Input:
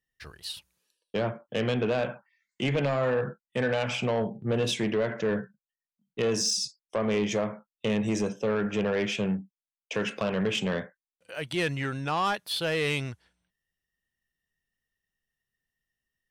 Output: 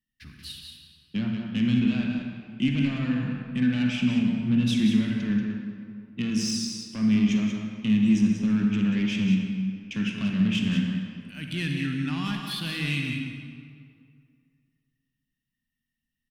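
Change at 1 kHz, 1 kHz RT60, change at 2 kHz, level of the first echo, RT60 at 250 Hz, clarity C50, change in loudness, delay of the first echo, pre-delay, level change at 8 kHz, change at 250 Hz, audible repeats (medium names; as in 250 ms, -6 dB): -10.5 dB, 2.2 s, -1.0 dB, -7.0 dB, 2.4 s, 1.0 dB, +3.0 dB, 184 ms, 37 ms, -3.5 dB, +9.0 dB, 1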